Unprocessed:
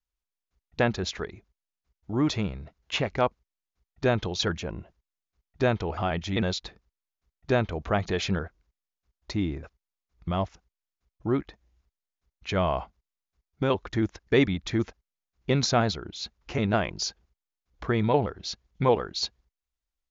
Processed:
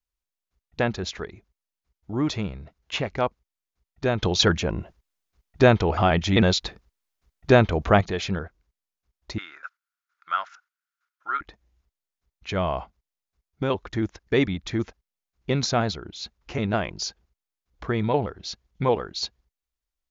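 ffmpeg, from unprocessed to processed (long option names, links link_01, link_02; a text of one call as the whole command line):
ffmpeg -i in.wav -filter_complex "[0:a]asettb=1/sr,asplit=3[link_01][link_02][link_03];[link_01]atrim=end=9.384[link_04];[link_02]atrim=start=9.38:end=11.41,asetpts=PTS-STARTPTS,afade=type=in:duration=0.004:curve=qsin,afade=type=out:start_time=2.026:duration=0.004:curve=qsin,highpass=frequency=1400:width_type=q:width=11[link_05];[link_03]atrim=start=11.406[link_06];[link_04][link_05]acrossfade=duration=0.004:curve1=hsin:curve2=qsin[link_07];[link_07][link_06]acrossfade=duration=0.004:curve1=qsin:curve2=hsin,asplit=3[link_08][link_09][link_10];[link_08]atrim=end=4.232[link_11];[link_09]atrim=start=4.228:end=8.012,asetpts=PTS-STARTPTS,volume=8dB[link_12];[link_10]atrim=start=8.008[link_13];[link_11][link_12]acrossfade=duration=0.004:curve1=hsin:curve2=hsin[link_14];[link_14][link_13]acrossfade=duration=0.004:curve1=hsin:curve2=hsin" out.wav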